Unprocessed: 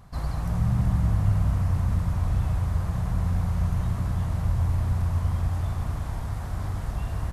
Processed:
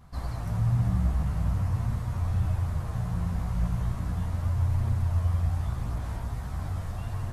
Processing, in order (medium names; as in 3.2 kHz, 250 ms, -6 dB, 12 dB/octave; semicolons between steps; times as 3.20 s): chorus voices 2, 0.41 Hz, delay 13 ms, depth 4.7 ms